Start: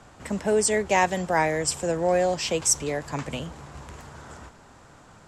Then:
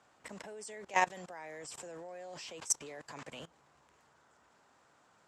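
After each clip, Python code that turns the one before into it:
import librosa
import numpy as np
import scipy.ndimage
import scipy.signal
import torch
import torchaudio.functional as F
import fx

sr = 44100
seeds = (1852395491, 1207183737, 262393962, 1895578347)

y = fx.highpass(x, sr, hz=510.0, slope=6)
y = fx.high_shelf(y, sr, hz=9600.0, db=-6.0)
y = fx.level_steps(y, sr, step_db=21)
y = F.gain(torch.from_numpy(y), -4.5).numpy()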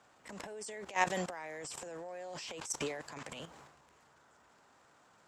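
y = fx.transient(x, sr, attack_db=-10, sustain_db=10)
y = F.gain(torch.from_numpy(y), 2.0).numpy()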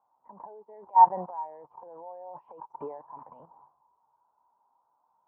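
y = 10.0 ** (-24.5 / 20.0) * np.tanh(x / 10.0 ** (-24.5 / 20.0))
y = fx.lowpass_res(y, sr, hz=940.0, q=5.8)
y = fx.spectral_expand(y, sr, expansion=1.5)
y = F.gain(torch.from_numpy(y), 5.5).numpy()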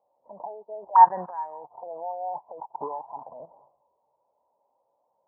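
y = fx.envelope_lowpass(x, sr, base_hz=550.0, top_hz=1700.0, q=6.7, full_db=-28.5, direction='up')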